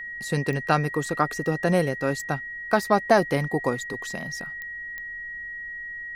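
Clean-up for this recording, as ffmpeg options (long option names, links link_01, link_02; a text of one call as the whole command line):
ffmpeg -i in.wav -af "adeclick=threshold=4,bandreject=frequency=1900:width=30,agate=range=-21dB:threshold=-28dB" out.wav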